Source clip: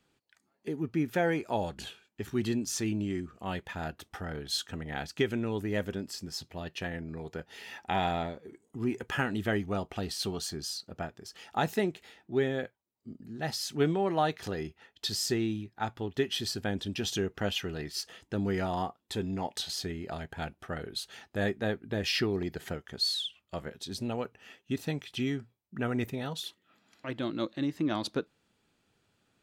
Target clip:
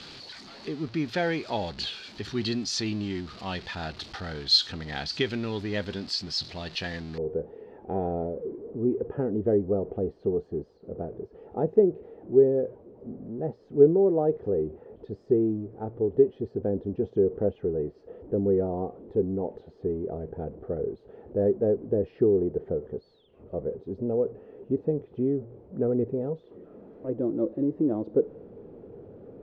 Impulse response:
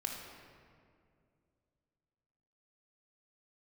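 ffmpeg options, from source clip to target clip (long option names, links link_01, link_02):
-af "aeval=exprs='val(0)+0.5*0.00794*sgn(val(0))':channel_layout=same,asetnsamples=nb_out_samples=441:pad=0,asendcmd='7.18 lowpass f 460',lowpass=frequency=4400:width_type=q:width=4.4"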